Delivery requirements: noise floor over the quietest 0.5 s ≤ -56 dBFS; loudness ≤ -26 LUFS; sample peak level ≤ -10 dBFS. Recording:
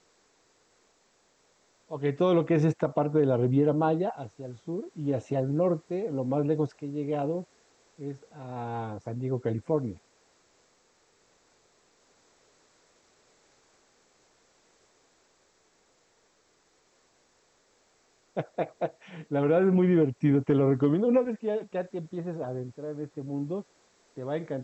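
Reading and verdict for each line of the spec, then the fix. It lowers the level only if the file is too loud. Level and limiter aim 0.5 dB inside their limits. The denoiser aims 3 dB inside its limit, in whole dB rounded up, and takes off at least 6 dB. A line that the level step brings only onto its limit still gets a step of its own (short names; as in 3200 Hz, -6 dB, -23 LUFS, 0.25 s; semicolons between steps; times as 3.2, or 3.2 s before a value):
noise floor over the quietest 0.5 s -67 dBFS: OK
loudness -28.5 LUFS: OK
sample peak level -12.5 dBFS: OK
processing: none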